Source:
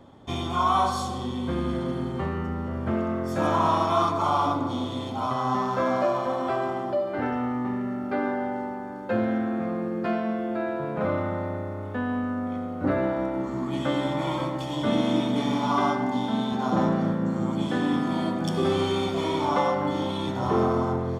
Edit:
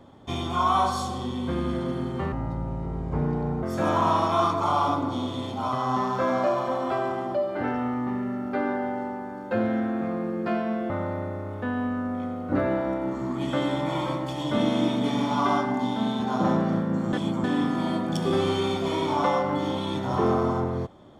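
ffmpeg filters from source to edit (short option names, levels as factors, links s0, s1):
-filter_complex "[0:a]asplit=6[s0][s1][s2][s3][s4][s5];[s0]atrim=end=2.324[s6];[s1]atrim=start=2.32:end=3.21,asetpts=PTS-STARTPTS,asetrate=29988,aresample=44100,atrim=end_sample=57719,asetpts=PTS-STARTPTS[s7];[s2]atrim=start=3.206:end=10.482[s8];[s3]atrim=start=11.218:end=17.452[s9];[s4]atrim=start=17.448:end=17.762,asetpts=PTS-STARTPTS,areverse[s10];[s5]atrim=start=17.758[s11];[s6][s7]acrossfade=d=0.004:c1=hsin:c2=hsin[s12];[s12][s8]acrossfade=d=0.004:c1=hsin:c2=hsin[s13];[s13][s9]acrossfade=d=0.004:c1=hsin:c2=hsin[s14];[s14][s10]acrossfade=d=0.004:c1=hsin:c2=hsin[s15];[s15][s11]acrossfade=d=0.004:c1=hsin:c2=hsin"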